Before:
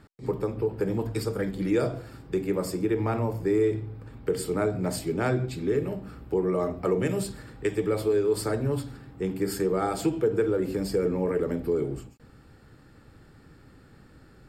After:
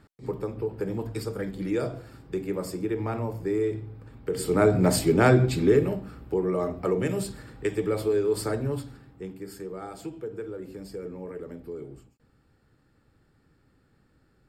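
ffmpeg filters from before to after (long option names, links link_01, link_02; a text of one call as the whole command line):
ffmpeg -i in.wav -af "volume=7.5dB,afade=type=in:start_time=4.3:duration=0.43:silence=0.298538,afade=type=out:start_time=5.62:duration=0.48:silence=0.398107,afade=type=out:start_time=8.51:duration=0.89:silence=0.281838" out.wav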